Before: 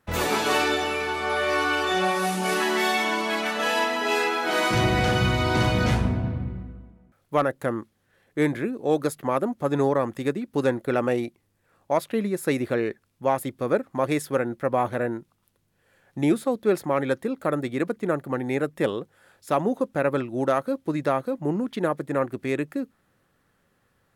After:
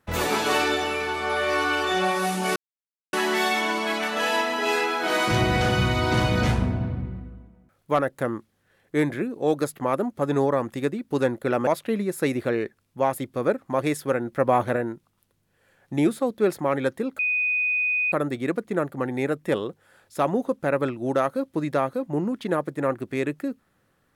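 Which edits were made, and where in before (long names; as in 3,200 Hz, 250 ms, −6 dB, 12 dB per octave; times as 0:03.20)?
0:02.56: splice in silence 0.57 s
0:11.10–0:11.92: remove
0:14.57–0:15.01: clip gain +3 dB
0:17.44: insert tone 2,490 Hz −20.5 dBFS 0.93 s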